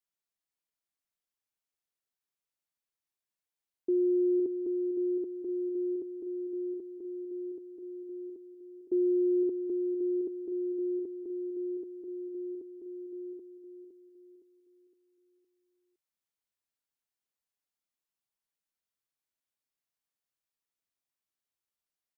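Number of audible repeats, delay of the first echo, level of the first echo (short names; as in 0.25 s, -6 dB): 4, 0.513 s, -8.0 dB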